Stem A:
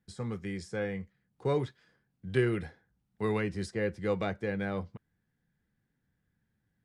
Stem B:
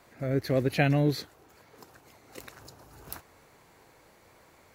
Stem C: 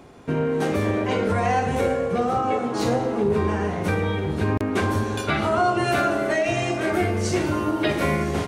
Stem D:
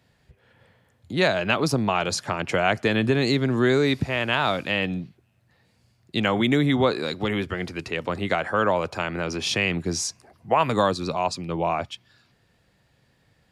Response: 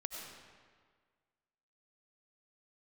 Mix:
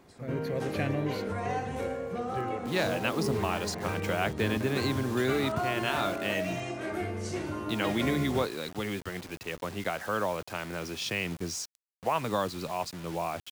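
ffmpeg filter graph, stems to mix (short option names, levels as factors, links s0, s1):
-filter_complex "[0:a]volume=0.299[s0];[1:a]volume=0.398,afade=t=out:st=2.09:d=0.48:silence=0.298538[s1];[2:a]volume=0.266[s2];[3:a]acrusher=bits=5:mix=0:aa=0.000001,adelay=1550,volume=0.376[s3];[s0][s1][s2][s3]amix=inputs=4:normalize=0"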